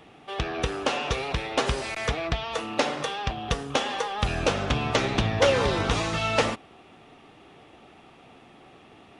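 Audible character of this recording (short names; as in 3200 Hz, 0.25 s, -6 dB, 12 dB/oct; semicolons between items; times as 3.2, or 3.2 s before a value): noise floor -52 dBFS; spectral tilt -4.5 dB/oct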